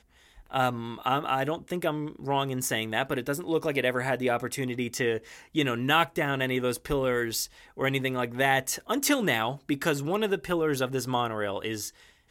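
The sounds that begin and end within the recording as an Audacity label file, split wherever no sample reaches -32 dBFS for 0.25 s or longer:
0.540000	5.180000	sound
5.550000	7.450000	sound
7.790000	11.890000	sound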